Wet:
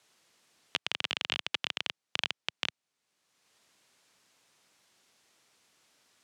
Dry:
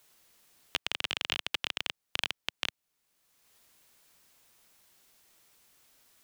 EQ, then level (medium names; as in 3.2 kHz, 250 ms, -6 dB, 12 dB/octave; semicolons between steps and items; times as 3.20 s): band-pass 120–7600 Hz; 0.0 dB